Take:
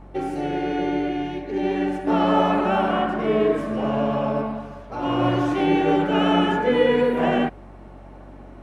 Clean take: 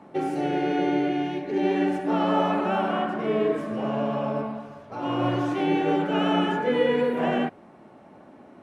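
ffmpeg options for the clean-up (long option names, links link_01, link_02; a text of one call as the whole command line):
ffmpeg -i in.wav -af "bandreject=frequency=47.1:width_type=h:width=4,bandreject=frequency=94.2:width_type=h:width=4,bandreject=frequency=141.3:width_type=h:width=4,bandreject=frequency=188.4:width_type=h:width=4,asetnsamples=nb_out_samples=441:pad=0,asendcmd='2.07 volume volume -4dB',volume=0dB" out.wav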